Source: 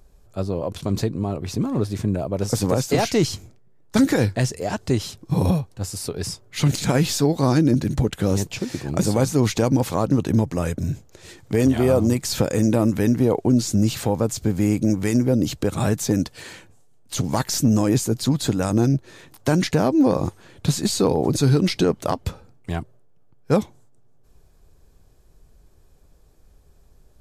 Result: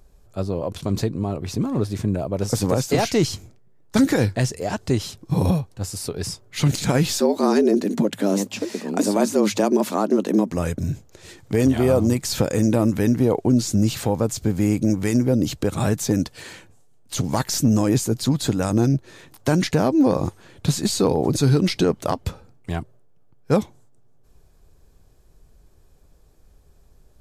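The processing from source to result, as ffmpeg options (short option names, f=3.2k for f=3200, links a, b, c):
-filter_complex "[0:a]asettb=1/sr,asplit=3[a][b][c];[a]atrim=end=7.204[d];[b]atrim=start=7.2:end=10.51,asetpts=PTS-STARTPTS,afade=t=in:d=0.004:c=qsin,afade=t=out:st=3.306:d=0.004:c=qsin,afreqshift=99[e];[c]atrim=start=10.506[f];[d][e]acrossfade=d=0.004:c1=hsin:c2=qsin[g];[g][f]acrossfade=d=0.004:c1=qsin:c2=hsin"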